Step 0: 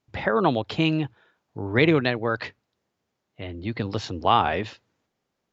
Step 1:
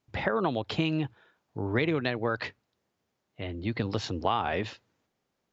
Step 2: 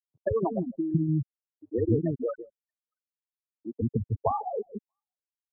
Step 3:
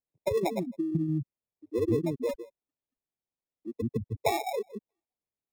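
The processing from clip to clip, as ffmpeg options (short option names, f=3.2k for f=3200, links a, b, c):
-af "acompressor=threshold=-22dB:ratio=6,volume=-1dB"
-filter_complex "[0:a]afftfilt=real='re*gte(hypot(re,im),0.224)':imag='im*gte(hypot(re,im),0.224)':win_size=1024:overlap=0.75,equalizer=f=1.8k:w=0.97:g=-12.5,acrossover=split=310|5300[a][b][c];[a]adelay=160[d];[c]adelay=630[e];[d][b][e]amix=inputs=3:normalize=0,volume=7dB"
-filter_complex "[0:a]asplit=2[a][b];[b]highpass=f=720:p=1,volume=11dB,asoftclip=type=tanh:threshold=-12dB[c];[a][c]amix=inputs=2:normalize=0,lowpass=f=1.5k:p=1,volume=-6dB,acrossover=split=290|670[d][e][f];[f]acrusher=samples=29:mix=1:aa=0.000001[g];[d][e][g]amix=inputs=3:normalize=0,volume=-1dB"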